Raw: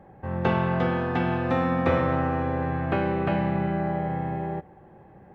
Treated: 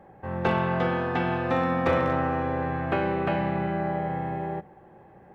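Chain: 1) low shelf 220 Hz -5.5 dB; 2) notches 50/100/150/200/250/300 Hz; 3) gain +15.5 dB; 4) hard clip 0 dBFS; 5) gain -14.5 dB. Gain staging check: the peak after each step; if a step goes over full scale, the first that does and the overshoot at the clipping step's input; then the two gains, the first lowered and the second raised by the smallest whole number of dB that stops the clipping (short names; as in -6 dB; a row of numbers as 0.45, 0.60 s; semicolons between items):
-11.5, -11.0, +4.5, 0.0, -14.5 dBFS; step 3, 4.5 dB; step 3 +10.5 dB, step 5 -9.5 dB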